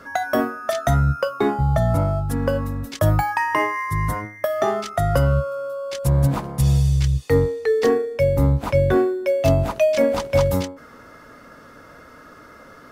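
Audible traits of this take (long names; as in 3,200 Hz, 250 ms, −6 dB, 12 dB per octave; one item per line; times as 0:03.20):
background noise floor −45 dBFS
spectral slope −5.5 dB per octave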